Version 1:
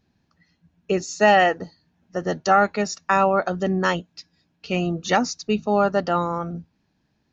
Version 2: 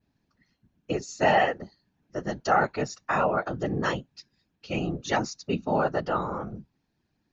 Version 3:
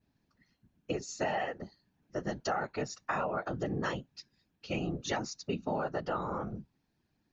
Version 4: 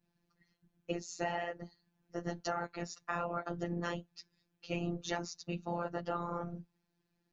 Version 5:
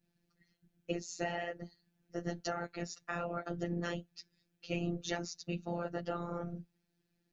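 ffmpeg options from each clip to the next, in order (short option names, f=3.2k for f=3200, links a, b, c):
-af "adynamicequalizer=threshold=0.00562:dfrequency=6400:dqfactor=0.97:tfrequency=6400:tqfactor=0.97:attack=5:release=100:ratio=0.375:range=2.5:mode=cutabove:tftype=bell,afftfilt=real='hypot(re,im)*cos(2*PI*random(0))':imag='hypot(re,im)*sin(2*PI*random(1))':win_size=512:overlap=0.75"
-af "acompressor=threshold=-28dB:ratio=6,volume=-2dB"
-af "afftfilt=real='hypot(re,im)*cos(PI*b)':imag='0':win_size=1024:overlap=0.75"
-af "equalizer=f=1k:t=o:w=0.56:g=-10.5,volume=1dB"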